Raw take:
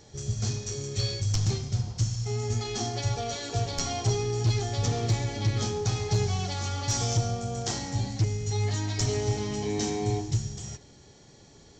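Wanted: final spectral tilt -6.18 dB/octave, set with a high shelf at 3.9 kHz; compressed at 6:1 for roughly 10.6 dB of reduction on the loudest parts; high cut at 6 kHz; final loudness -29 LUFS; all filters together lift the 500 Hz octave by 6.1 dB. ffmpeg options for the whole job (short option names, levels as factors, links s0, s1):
-af "lowpass=6000,equalizer=f=500:t=o:g=8,highshelf=f=3900:g=-7.5,acompressor=threshold=0.0251:ratio=6,volume=2.24"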